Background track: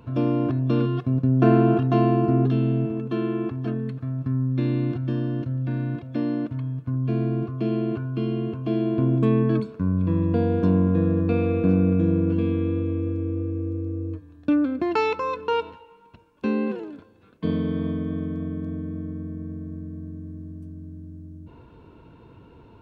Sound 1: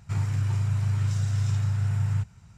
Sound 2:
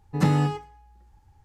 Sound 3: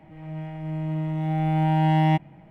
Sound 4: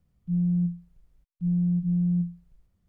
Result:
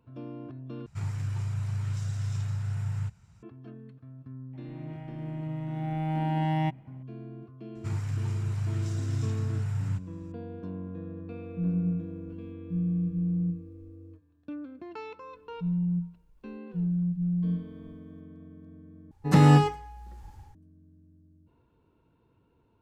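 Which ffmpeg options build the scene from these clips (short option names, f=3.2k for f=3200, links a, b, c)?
-filter_complex "[1:a]asplit=2[a][b];[4:a]asplit=2[c][d];[0:a]volume=-18.5dB[e];[a]aresample=32000,aresample=44100[f];[2:a]dynaudnorm=f=110:g=5:m=14dB[g];[e]asplit=3[h][i][j];[h]atrim=end=0.864[k];[f]atrim=end=2.57,asetpts=PTS-STARTPTS,volume=-6dB[l];[i]atrim=start=3.426:end=19.114[m];[g]atrim=end=1.44,asetpts=PTS-STARTPTS,volume=-4dB[n];[j]atrim=start=20.546[o];[3:a]atrim=end=2.5,asetpts=PTS-STARTPTS,volume=-7.5dB,afade=t=in:d=0.004:c=hsin,afade=t=out:st=2.496:d=0.004:c=hsin,adelay=199773S[p];[b]atrim=end=2.57,asetpts=PTS-STARTPTS,volume=-5dB,afade=t=in:d=0.004:c=hsin,afade=t=out:st=2.566:d=0.004:c=hsin,adelay=7750[q];[c]atrim=end=2.88,asetpts=PTS-STARTPTS,volume=-4dB,afade=t=in:d=0.004:c=hsin,afade=t=out:st=2.876:d=0.004:c=hsin,adelay=11290[r];[d]atrim=end=2.88,asetpts=PTS-STARTPTS,volume=-3.5dB,afade=t=in:d=0.004:c=hsin,afade=t=out:st=2.876:d=0.004:c=hsin,adelay=15330[s];[k][l]acrossfade=d=0.004:c1=hsin:c2=hsin[t];[t][m]acrossfade=d=0.004:c1=hsin:c2=hsin[u];[u][n]acrossfade=d=0.004:c1=hsin:c2=hsin[v];[v][o]acrossfade=d=0.004:c1=hsin:c2=hsin[w];[w][p][q][r][s]amix=inputs=5:normalize=0"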